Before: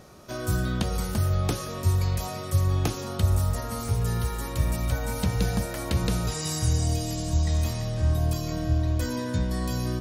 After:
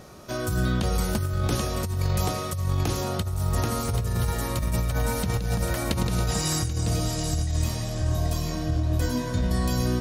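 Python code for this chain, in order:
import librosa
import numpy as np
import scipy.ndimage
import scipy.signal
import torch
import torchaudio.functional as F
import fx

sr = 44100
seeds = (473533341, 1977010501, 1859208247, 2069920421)

y = fx.chorus_voices(x, sr, voices=6, hz=1.4, base_ms=21, depth_ms=3.0, mix_pct=30, at=(6.84, 9.42), fade=0.02)
y = y + 10.0 ** (-7.0 / 20.0) * np.pad(y, (int(783 * sr / 1000.0), 0))[:len(y)]
y = fx.over_compress(y, sr, threshold_db=-26.0, ratio=-1.0)
y = y * librosa.db_to_amplitude(2.0)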